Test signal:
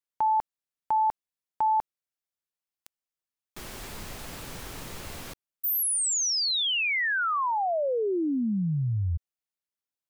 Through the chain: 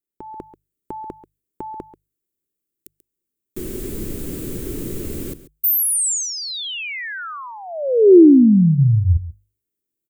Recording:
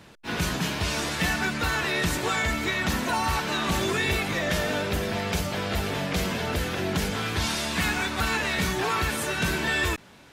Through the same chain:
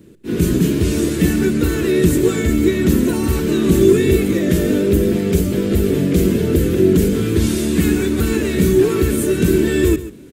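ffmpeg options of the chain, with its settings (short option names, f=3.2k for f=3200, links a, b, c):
-af "bandreject=f=50:t=h:w=6,bandreject=f=100:t=h:w=6,bandreject=f=150:t=h:w=6,aecho=1:1:137:0.178,aexciter=amount=3.9:drive=2.5:freq=7.1k,dynaudnorm=f=220:g=3:m=7dB,lowshelf=f=540:t=q:w=3:g=13.5,volume=-8dB"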